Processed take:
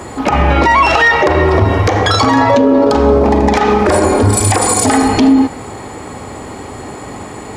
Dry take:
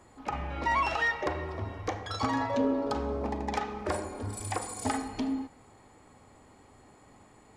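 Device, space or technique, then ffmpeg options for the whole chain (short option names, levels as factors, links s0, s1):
mastering chain: -af "highpass=47,equalizer=f=400:t=o:w=0.67:g=3,acompressor=threshold=0.0282:ratio=2.5,alimiter=level_in=29.9:limit=0.891:release=50:level=0:latency=1,volume=0.891"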